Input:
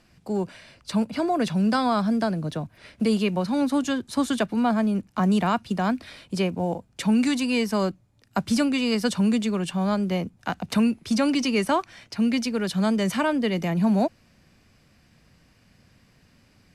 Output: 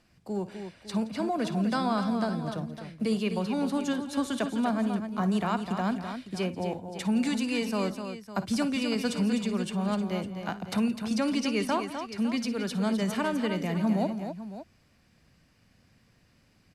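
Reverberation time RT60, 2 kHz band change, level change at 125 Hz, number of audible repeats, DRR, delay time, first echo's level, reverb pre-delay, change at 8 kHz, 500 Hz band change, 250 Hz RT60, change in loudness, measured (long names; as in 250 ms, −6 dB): no reverb audible, −5.0 dB, −5.0 dB, 4, no reverb audible, 54 ms, −16.0 dB, no reverb audible, −5.0 dB, −5.0 dB, no reverb audible, −5.0 dB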